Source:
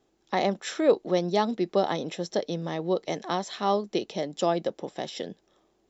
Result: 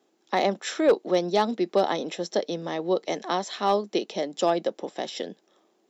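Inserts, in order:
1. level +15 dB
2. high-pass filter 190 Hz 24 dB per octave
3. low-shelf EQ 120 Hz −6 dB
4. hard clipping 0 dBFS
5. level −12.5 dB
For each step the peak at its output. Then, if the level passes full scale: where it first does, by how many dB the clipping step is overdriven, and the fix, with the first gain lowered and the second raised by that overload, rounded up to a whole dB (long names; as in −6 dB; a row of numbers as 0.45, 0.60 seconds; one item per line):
+5.5, +5.5, +5.0, 0.0, −12.5 dBFS
step 1, 5.0 dB
step 1 +10 dB, step 5 −7.5 dB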